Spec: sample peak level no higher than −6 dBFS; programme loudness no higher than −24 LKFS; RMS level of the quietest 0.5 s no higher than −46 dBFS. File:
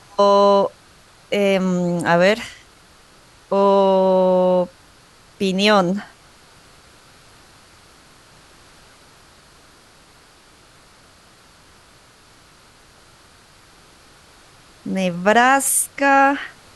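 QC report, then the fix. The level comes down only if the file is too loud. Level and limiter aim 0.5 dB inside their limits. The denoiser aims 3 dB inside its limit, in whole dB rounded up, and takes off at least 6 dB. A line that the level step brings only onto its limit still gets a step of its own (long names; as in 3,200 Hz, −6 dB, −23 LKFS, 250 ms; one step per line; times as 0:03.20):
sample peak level −3.5 dBFS: out of spec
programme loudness −17.0 LKFS: out of spec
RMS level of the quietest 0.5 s −50 dBFS: in spec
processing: level −7.5 dB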